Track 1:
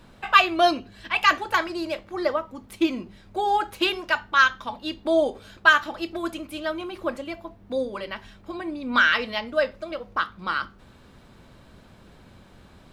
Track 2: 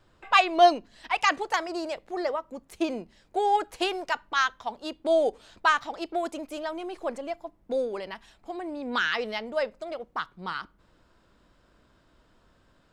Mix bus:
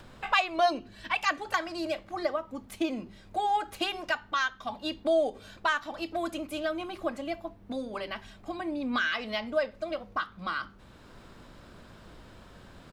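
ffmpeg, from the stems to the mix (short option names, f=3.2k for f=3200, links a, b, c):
-filter_complex "[0:a]acompressor=threshold=-26dB:ratio=6,volume=-3dB[a];[1:a]bandreject=f=50:t=h:w=6,bandreject=f=100:t=h:w=6,bandreject=f=150:t=h:w=6,bandreject=f=200:t=h:w=6,bandreject=f=250:t=h:w=6,bandreject=f=300:t=h:w=6,bandreject=f=350:t=h:w=6,acompressor=mode=upward:threshold=-34dB:ratio=2.5,adelay=1.3,volume=-5.5dB[b];[a][b]amix=inputs=2:normalize=0"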